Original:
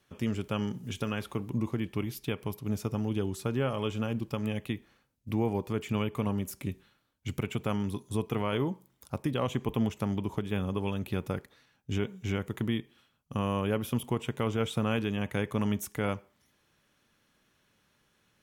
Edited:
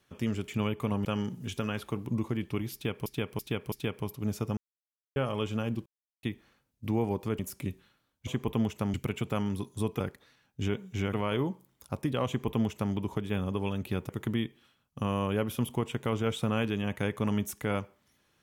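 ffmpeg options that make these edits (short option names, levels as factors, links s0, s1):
-filter_complex "[0:a]asplit=16[s0][s1][s2][s3][s4][s5][s6][s7][s8][s9][s10][s11][s12][s13][s14][s15];[s0]atrim=end=0.482[s16];[s1]atrim=start=5.828:end=6.402[s17];[s2]atrim=start=0.478:end=2.492[s18];[s3]atrim=start=2.158:end=2.492[s19];[s4]atrim=start=2.158:end=2.492[s20];[s5]atrim=start=2.158:end=3.01,asetpts=PTS-STARTPTS,afade=t=out:st=0.848:d=0.004:c=hsin[s21];[s6]atrim=start=3.01:end=3.6,asetpts=PTS-STARTPTS,volume=0[s22];[s7]atrim=start=3.6:end=4.3,asetpts=PTS-STARTPTS,afade=t=in:d=0.004:c=hsin,afade=t=out:st=0.696:d=0.004:c=hsin[s23];[s8]atrim=start=4.3:end=4.67,asetpts=PTS-STARTPTS,volume=0[s24];[s9]atrim=start=4.67:end=5.832,asetpts=PTS-STARTPTS,afade=t=in:d=0.004:c=hsin[s25];[s10]atrim=start=6.398:end=7.282[s26];[s11]atrim=start=9.478:end=10.152[s27];[s12]atrim=start=7.278:end=8.342[s28];[s13]atrim=start=11.298:end=12.432[s29];[s14]atrim=start=8.338:end=11.302[s30];[s15]atrim=start=12.428[s31];[s16][s17]acrossfade=d=0.004:c1=hsin:c2=hsin[s32];[s32][s18]acrossfade=d=0.004:c1=hsin:c2=hsin[s33];[s33][s19]acrossfade=d=0.004:c1=hsin:c2=hsin[s34];[s34][s20]acrossfade=d=0.004:c1=hsin:c2=hsin[s35];[s21][s22][s23][s24][s25]concat=n=5:v=0:a=1[s36];[s35][s36]acrossfade=d=0.004:c1=hsin:c2=hsin[s37];[s37][s26]acrossfade=d=0.004:c1=hsin:c2=hsin[s38];[s38][s27]acrossfade=d=0.004:c1=hsin:c2=hsin[s39];[s39][s28]acrossfade=d=0.004:c1=hsin:c2=hsin[s40];[s40][s29]acrossfade=d=0.004:c1=hsin:c2=hsin[s41];[s41][s30]acrossfade=d=0.004:c1=hsin:c2=hsin[s42];[s42][s31]acrossfade=d=0.004:c1=hsin:c2=hsin"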